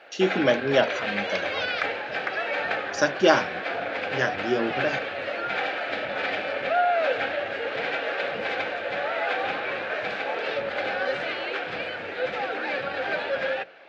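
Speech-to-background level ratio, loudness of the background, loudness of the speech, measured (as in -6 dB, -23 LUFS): 3.0 dB, -28.0 LUFS, -25.0 LUFS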